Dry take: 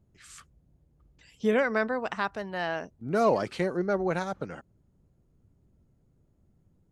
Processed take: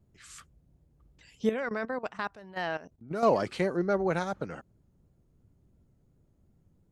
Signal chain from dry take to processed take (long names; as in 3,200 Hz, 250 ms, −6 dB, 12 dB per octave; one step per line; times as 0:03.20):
pitch vibrato 2.8 Hz 45 cents
0:01.49–0:03.23: output level in coarse steps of 16 dB